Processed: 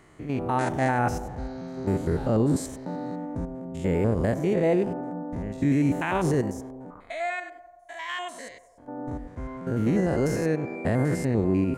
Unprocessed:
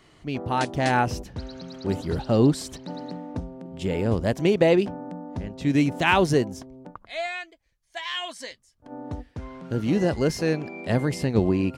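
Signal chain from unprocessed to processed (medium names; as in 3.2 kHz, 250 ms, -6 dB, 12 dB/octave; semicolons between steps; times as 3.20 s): spectrogram pixelated in time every 100 ms; peak limiter -18 dBFS, peak gain reduction 9.5 dB; high-order bell 3.8 kHz -9.5 dB 1.3 oct; on a send: band-passed feedback delay 89 ms, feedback 73%, band-pass 690 Hz, level -14 dB; on the sum: trim +3 dB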